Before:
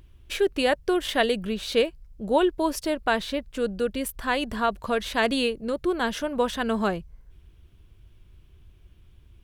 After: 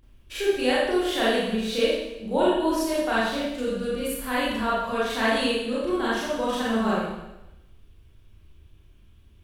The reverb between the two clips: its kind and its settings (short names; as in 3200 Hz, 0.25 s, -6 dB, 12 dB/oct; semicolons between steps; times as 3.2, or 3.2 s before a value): Schroeder reverb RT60 0.95 s, combs from 28 ms, DRR -9 dB; gain -8.5 dB